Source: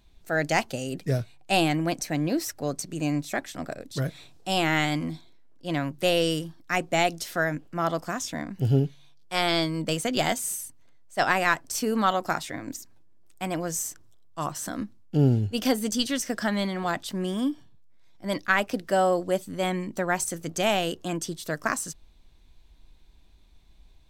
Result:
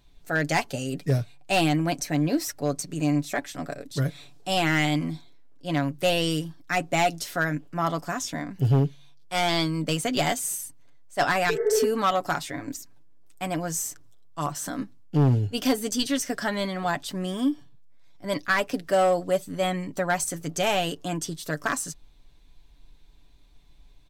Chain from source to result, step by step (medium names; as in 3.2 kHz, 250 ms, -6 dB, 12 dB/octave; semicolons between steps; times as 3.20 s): comb 7 ms, depth 50%; spectral replace 11.52–11.84 s, 350–2200 Hz after; overload inside the chain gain 15.5 dB